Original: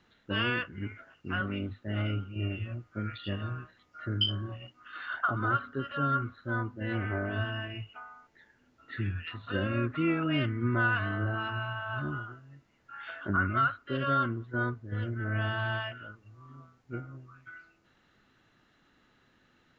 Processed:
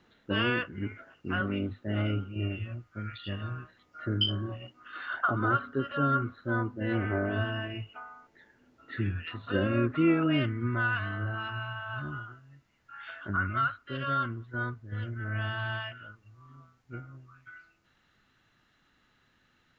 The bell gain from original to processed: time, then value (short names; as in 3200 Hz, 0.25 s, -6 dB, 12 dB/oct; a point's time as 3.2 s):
bell 380 Hz 2.4 oct
2.26 s +4.5 dB
3.06 s -7 dB
4.03 s +5 dB
10.25 s +5 dB
10.83 s -6 dB